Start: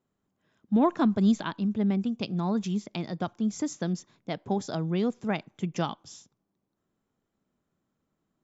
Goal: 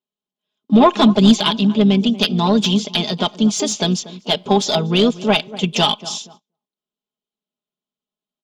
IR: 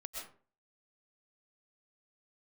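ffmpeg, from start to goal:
-filter_complex "[0:a]asplit=2[s0][s1];[s1]adelay=238,lowpass=f=1200:p=1,volume=0.133,asplit=2[s2][s3];[s3]adelay=238,lowpass=f=1200:p=1,volume=0.33,asplit=2[s4][s5];[s5]adelay=238,lowpass=f=1200:p=1,volume=0.33[s6];[s0][s2][s4][s6]amix=inputs=4:normalize=0,asplit=3[s7][s8][s9];[s8]asetrate=33038,aresample=44100,atempo=1.33484,volume=0.126[s10];[s9]asetrate=58866,aresample=44100,atempo=0.749154,volume=0.178[s11];[s7][s10][s11]amix=inputs=3:normalize=0,highshelf=f=2400:t=q:w=3:g=9.5,agate=range=0.0447:threshold=0.00224:ratio=16:detection=peak,aecho=1:1:4.8:0.65,asplit=2[s12][s13];[s13]highpass=f=720:p=1,volume=7.08,asoftclip=type=tanh:threshold=0.596[s14];[s12][s14]amix=inputs=2:normalize=0,lowpass=f=1600:p=1,volume=0.501,volume=2.11"

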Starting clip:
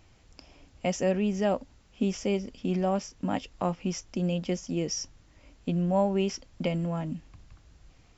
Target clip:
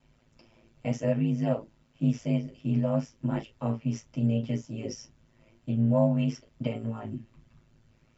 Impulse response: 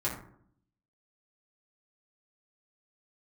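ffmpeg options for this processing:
-filter_complex "[1:a]atrim=start_sample=2205,afade=t=out:st=0.14:d=0.01,atrim=end_sample=6615,asetrate=70560,aresample=44100[s0];[0:a][s0]afir=irnorm=-1:irlink=0,aeval=exprs='val(0)*sin(2*PI*55*n/s)':c=same,volume=0.531"

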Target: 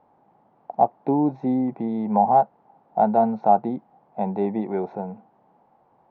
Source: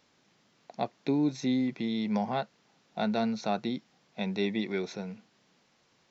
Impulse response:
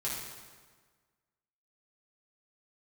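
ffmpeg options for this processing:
-af "lowpass=f=820:t=q:w=5.3,volume=1.68"

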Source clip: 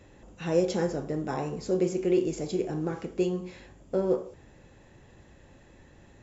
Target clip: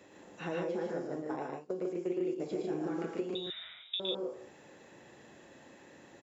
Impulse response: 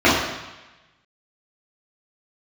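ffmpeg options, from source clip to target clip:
-filter_complex "[0:a]acrossover=split=2700[s0][s1];[s1]acompressor=threshold=0.00141:ratio=4:attack=1:release=60[s2];[s0][s2]amix=inputs=2:normalize=0,asettb=1/sr,asplit=3[s3][s4][s5];[s3]atrim=end=1.074[s6];[s4]atrim=start=1.07:end=2.4,asetpts=PTS-STARTPTS,afade=t=in:d=0.004:c=qsin,afade=t=out:st=1.326:d=0.004:c=qsin,agate=range=0.0398:threshold=0.0355:ratio=16:detection=peak[s7];[s5]atrim=start=2.396[s8];[s6][s7]acrossfade=d=0.004:c1=hsin:c2=qsin[s9];[s9][s8]acrossfade=d=0.004:c1=qsin:c2=hsin,highpass=250,acompressor=threshold=0.02:ratio=12,asettb=1/sr,asplit=3[s10][s11][s12];[s10]atrim=end=3.354[s13];[s11]atrim=start=3.35:end=4,asetpts=PTS-STARTPTS,afade=t=in:d=0.004:c=qsin,afade=t=out:st=0.646:d=0.004:c=qsin,lowpass=f=3400:t=q:w=0.5098,lowpass=f=3400:t=q:w=0.6013,lowpass=f=3400:t=q:w=0.9,lowpass=f=3400:t=q:w=2.563,afreqshift=-4000[s14];[s12]atrim=start=3.996[s15];[s13][s14]acrossfade=d=0.004:c1=hsin:c2=qsin[s16];[s16][s15]acrossfade=d=0.004:c1=qsin:c2=hsin,aecho=1:1:113.7|148.7:0.631|0.708"

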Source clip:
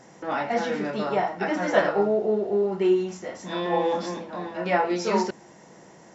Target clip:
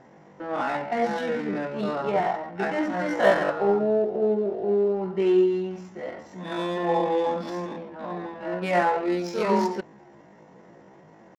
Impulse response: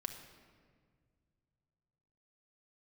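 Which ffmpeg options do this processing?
-af "atempo=0.54,adynamicsmooth=sensitivity=5.5:basefreq=2600"

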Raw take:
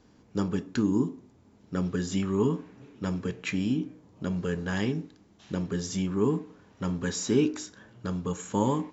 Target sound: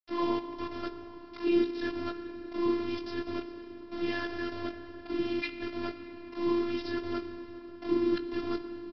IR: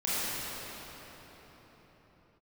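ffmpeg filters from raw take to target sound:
-filter_complex "[0:a]areverse,aresample=11025,aeval=exprs='val(0)*gte(abs(val(0)),0.0211)':c=same,aresample=44100,asplit=2[s0][s1];[s1]adelay=18,volume=0.251[s2];[s0][s2]amix=inputs=2:normalize=0,aecho=1:1:402:0.0668,asplit=2[s3][s4];[1:a]atrim=start_sample=2205[s5];[s4][s5]afir=irnorm=-1:irlink=0,volume=0.119[s6];[s3][s6]amix=inputs=2:normalize=0,afftfilt=real='hypot(re,im)*cos(PI*b)':imag='0':win_size=512:overlap=0.75"

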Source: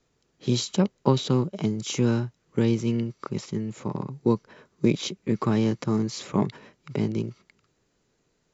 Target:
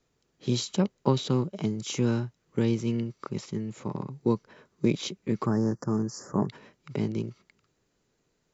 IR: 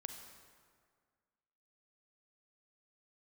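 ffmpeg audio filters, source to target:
-filter_complex "[0:a]asettb=1/sr,asplit=3[s0][s1][s2];[s0]atrim=end=5.464[s3];[s1]atrim=start=5.46:end=6.49,asetpts=PTS-STARTPTS,afade=t=in:d=0.004:c=qsin,afade=t=out:st=1.026:d=0.004:c=qsin,asuperstop=centerf=3000:order=12:qfactor=0.95[s4];[s2]atrim=start=6.486[s5];[s3][s4]acrossfade=d=0.004:c1=hsin:c2=qsin[s6];[s6][s5]acrossfade=d=0.004:c1=qsin:c2=hsin,volume=0.708"

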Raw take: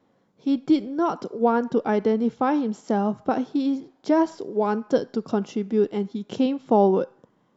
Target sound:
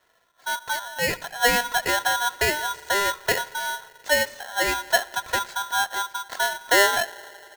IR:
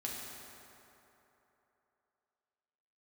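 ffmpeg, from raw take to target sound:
-filter_complex "[0:a]aecho=1:1:1.5:0.67,asplit=2[s0][s1];[1:a]atrim=start_sample=2205,lowpass=f=1600:w=0.5412,lowpass=f=1600:w=1.3066[s2];[s1][s2]afir=irnorm=-1:irlink=0,volume=0.112[s3];[s0][s3]amix=inputs=2:normalize=0,aeval=exprs='val(0)*sgn(sin(2*PI*1200*n/s))':c=same,volume=0.841"

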